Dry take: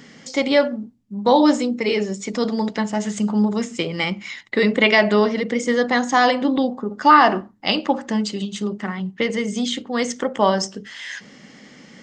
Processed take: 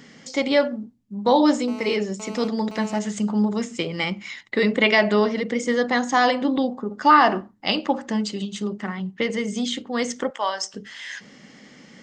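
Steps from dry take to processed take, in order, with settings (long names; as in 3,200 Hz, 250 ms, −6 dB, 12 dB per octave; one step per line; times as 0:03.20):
0:01.68–0:02.99: phone interference −35 dBFS
0:10.30–0:10.74: high-pass filter 900 Hz 12 dB per octave
level −2.5 dB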